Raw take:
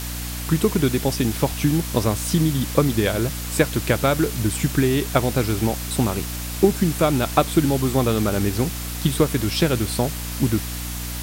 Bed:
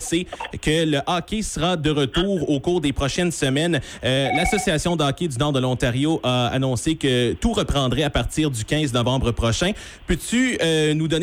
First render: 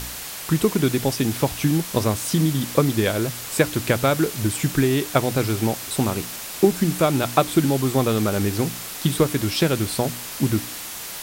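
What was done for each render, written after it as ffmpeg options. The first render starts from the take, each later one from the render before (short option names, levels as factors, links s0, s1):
-af "bandreject=f=60:t=h:w=4,bandreject=f=120:t=h:w=4,bandreject=f=180:t=h:w=4,bandreject=f=240:t=h:w=4,bandreject=f=300:t=h:w=4"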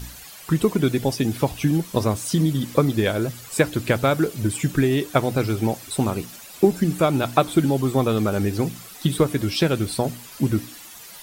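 -af "afftdn=nr=12:nf=-34"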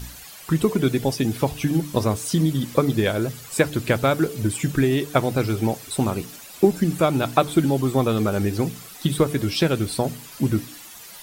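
-af "bandreject=f=147.3:t=h:w=4,bandreject=f=294.6:t=h:w=4,bandreject=f=441.9:t=h:w=4"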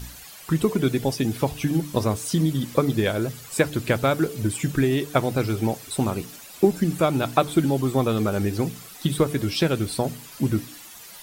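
-af "volume=0.841"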